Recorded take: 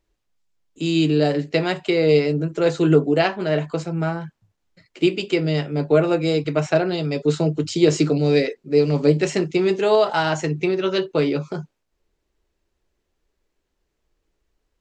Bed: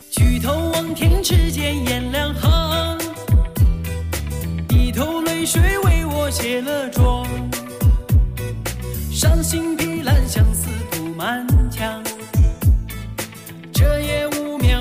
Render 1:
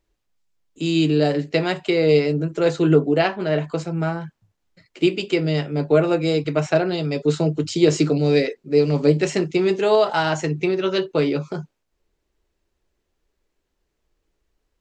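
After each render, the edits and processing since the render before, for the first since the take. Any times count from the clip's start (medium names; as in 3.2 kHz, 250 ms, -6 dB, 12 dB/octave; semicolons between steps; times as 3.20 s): 2.76–3.64 s: distance through air 54 m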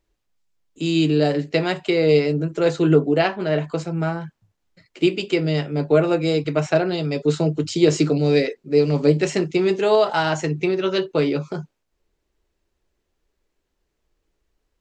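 no audible change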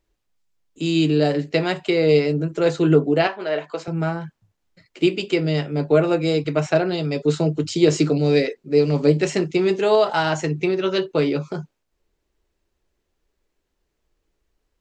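3.27–3.88 s: band-pass 430–6300 Hz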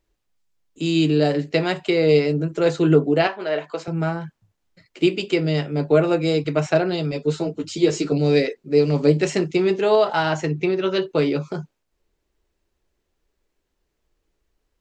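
7.11–8.12 s: three-phase chorus; 9.62–11.02 s: distance through air 59 m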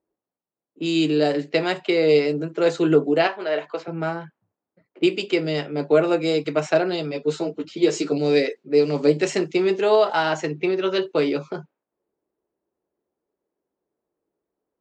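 high-pass 240 Hz 12 dB/octave; level-controlled noise filter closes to 820 Hz, open at -19 dBFS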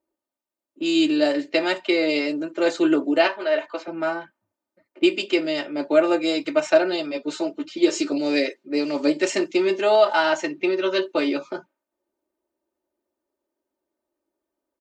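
bass shelf 360 Hz -6 dB; comb 3.3 ms, depth 79%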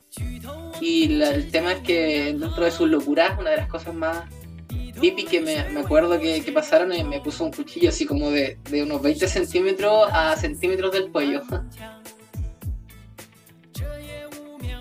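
add bed -16 dB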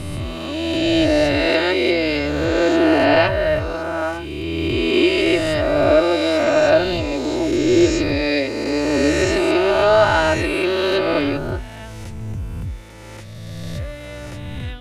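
reverse spectral sustain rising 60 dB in 2.66 s; distance through air 60 m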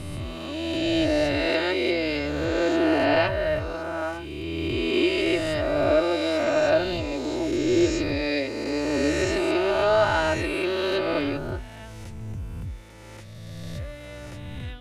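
trim -6.5 dB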